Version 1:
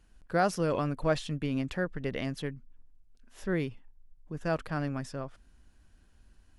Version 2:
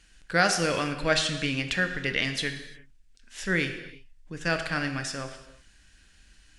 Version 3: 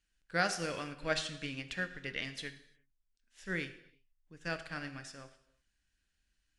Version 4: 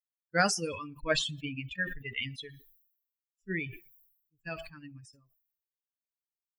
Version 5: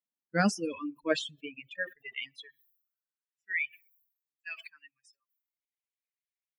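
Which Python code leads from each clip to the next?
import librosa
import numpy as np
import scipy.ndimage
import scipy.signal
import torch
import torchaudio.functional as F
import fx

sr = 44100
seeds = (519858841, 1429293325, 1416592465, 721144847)

y1 = fx.band_shelf(x, sr, hz=3800.0, db=14.0, octaves=2.9)
y1 = fx.rev_gated(y1, sr, seeds[0], gate_ms=380, shape='falling', drr_db=6.0)
y2 = fx.upward_expand(y1, sr, threshold_db=-48.0, expansion=1.5)
y2 = y2 * 10.0 ** (-8.0 / 20.0)
y3 = fx.bin_expand(y2, sr, power=3.0)
y3 = fx.sustainer(y3, sr, db_per_s=72.0)
y3 = y3 * 10.0 ** (8.0 / 20.0)
y4 = fx.filter_sweep_highpass(y3, sr, from_hz=230.0, to_hz=2100.0, start_s=0.53, end_s=3.56, q=3.6)
y4 = fx.bass_treble(y4, sr, bass_db=6, treble_db=-4)
y4 = fx.dereverb_blind(y4, sr, rt60_s=0.9)
y4 = y4 * 10.0 ** (-3.0 / 20.0)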